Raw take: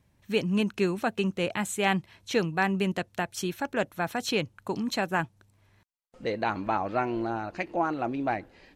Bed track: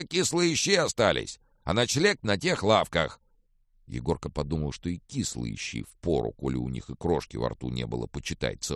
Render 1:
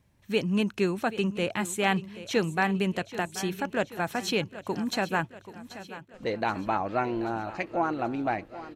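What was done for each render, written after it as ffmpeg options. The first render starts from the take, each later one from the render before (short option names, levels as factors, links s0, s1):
-af "aecho=1:1:782|1564|2346|3128|3910:0.178|0.0978|0.0538|0.0296|0.0163"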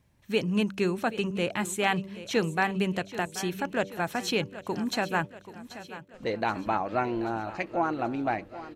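-af "bandreject=f=97.26:t=h:w=4,bandreject=f=194.52:t=h:w=4,bandreject=f=291.78:t=h:w=4,bandreject=f=389.04:t=h:w=4,bandreject=f=486.3:t=h:w=4,bandreject=f=583.56:t=h:w=4"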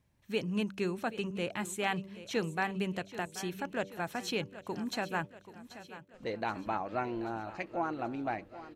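-af "volume=0.473"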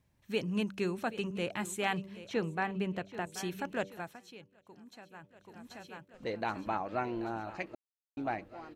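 -filter_complex "[0:a]asettb=1/sr,asplit=3[s0][s1][s2];[s0]atrim=end=2.264[s3];[s1]atrim=start=2.26:end=3.27,asetpts=PTS-STARTPTS,afade=t=in:d=0.004:c=qsin,afade=t=out:st=1.006:d=0.004:c=qsin,highshelf=f=4100:g=-12[s4];[s2]atrim=start=3.266[s5];[s3][s4]acrossfade=d=0.004:c1=hsin:c2=qsin[s6];[s6][s5]acrossfade=d=0.004:c1=qsin:c2=hsin,asplit=5[s7][s8][s9][s10][s11];[s7]atrim=end=4.2,asetpts=PTS-STARTPTS,afade=t=out:st=3.82:d=0.38:silence=0.133352[s12];[s8]atrim=start=4.2:end=5.21,asetpts=PTS-STARTPTS,volume=0.133[s13];[s9]atrim=start=5.21:end=7.75,asetpts=PTS-STARTPTS,afade=t=in:d=0.38:silence=0.133352,afade=t=out:st=2.536:d=0.004:c=hsin[s14];[s10]atrim=start=7.75:end=8.17,asetpts=PTS-STARTPTS,volume=0[s15];[s11]atrim=start=8.17,asetpts=PTS-STARTPTS,afade=t=in:d=0.004:c=hsin[s16];[s12][s13][s14][s15][s16]concat=n=5:v=0:a=1"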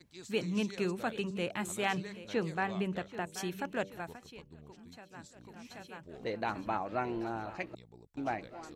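-filter_complex "[1:a]volume=0.0596[s0];[0:a][s0]amix=inputs=2:normalize=0"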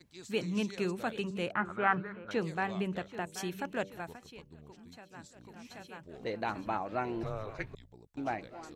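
-filter_complex "[0:a]asettb=1/sr,asplit=3[s0][s1][s2];[s0]atrim=end=1.524[s3];[s1]atrim=start=1.52:end=2.31,asetpts=PTS-STARTPTS,afade=t=in:d=0.004:c=qsin,afade=t=out:st=0.786:d=0.004:c=qsin,lowpass=f=1400:t=q:w=7.1[s4];[s2]atrim=start=2.306[s5];[s3][s4]acrossfade=d=0.004:c1=hsin:c2=qsin[s6];[s6][s5]acrossfade=d=0.004:c1=qsin:c2=hsin,asettb=1/sr,asplit=3[s7][s8][s9];[s7]atrim=end=7.234[s10];[s8]atrim=start=7.23:end=7.93,asetpts=PTS-STARTPTS,afade=t=in:d=0.004:c=qsin,afade=t=out:st=0.696:d=0.004:c=qsin,afreqshift=-210[s11];[s9]atrim=start=7.926[s12];[s10][s11]acrossfade=d=0.004:c1=hsin:c2=qsin[s13];[s13][s12]acrossfade=d=0.004:c1=qsin:c2=hsin"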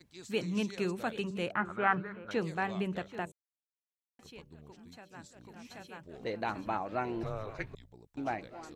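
-filter_complex "[0:a]asplit=3[s0][s1][s2];[s0]atrim=end=3.32,asetpts=PTS-STARTPTS,afade=t=out:st=3.316:d=0.004:c=hsin[s3];[s1]atrim=start=3.32:end=4.19,asetpts=PTS-STARTPTS,volume=0[s4];[s2]atrim=start=4.19,asetpts=PTS-STARTPTS,afade=t=in:d=0.004:c=hsin[s5];[s3][s4][s5]concat=n=3:v=0:a=1"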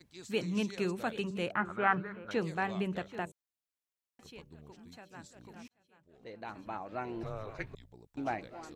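-filter_complex "[0:a]asplit=2[s0][s1];[s0]atrim=end=5.68,asetpts=PTS-STARTPTS,afade=t=out:st=5.676:d=0.004:c=hsin[s2];[s1]atrim=start=5.68,asetpts=PTS-STARTPTS,afade=t=in:d=2.21[s3];[s2][s3]concat=n=2:v=0:a=1"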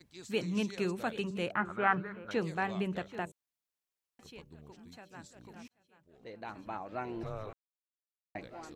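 -filter_complex "[0:a]asplit=3[s0][s1][s2];[s0]atrim=end=7.53,asetpts=PTS-STARTPTS,afade=t=out:st=7.526:d=0.004:c=hsin[s3];[s1]atrim=start=7.53:end=8.35,asetpts=PTS-STARTPTS,volume=0[s4];[s2]atrim=start=8.35,asetpts=PTS-STARTPTS,afade=t=in:d=0.004:c=hsin[s5];[s3][s4][s5]concat=n=3:v=0:a=1"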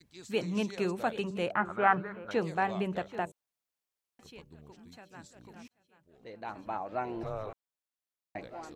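-af "adynamicequalizer=threshold=0.00398:dfrequency=710:dqfactor=0.98:tfrequency=710:tqfactor=0.98:attack=5:release=100:ratio=0.375:range=3:mode=boostabove:tftype=bell"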